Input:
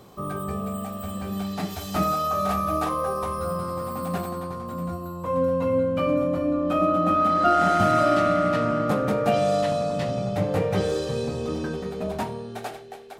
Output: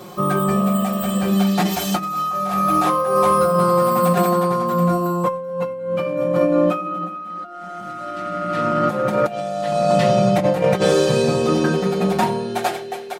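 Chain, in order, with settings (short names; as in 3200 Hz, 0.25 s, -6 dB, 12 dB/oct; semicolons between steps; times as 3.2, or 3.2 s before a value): HPF 160 Hz 6 dB/oct; comb 5.6 ms, depth 100%; negative-ratio compressor -24 dBFS, ratio -0.5; gain +6 dB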